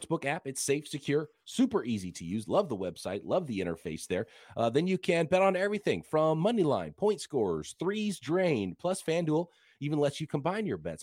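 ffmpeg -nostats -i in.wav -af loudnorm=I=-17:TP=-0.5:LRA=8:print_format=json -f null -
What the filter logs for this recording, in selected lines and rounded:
"input_i" : "-31.1",
"input_tp" : "-13.6",
"input_lra" : "3.4",
"input_thresh" : "-41.2",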